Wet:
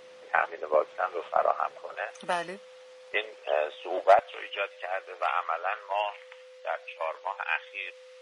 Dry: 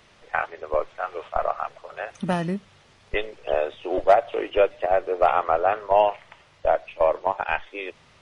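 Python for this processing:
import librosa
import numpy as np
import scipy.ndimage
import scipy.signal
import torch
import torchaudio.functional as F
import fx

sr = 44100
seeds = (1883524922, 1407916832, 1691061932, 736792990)

y = fx.highpass(x, sr, hz=fx.steps((0.0, 270.0), (1.95, 650.0), (4.19, 1400.0)), slope=12)
y = y + 10.0 ** (-48.0 / 20.0) * np.sin(2.0 * np.pi * 510.0 * np.arange(len(y)) / sr)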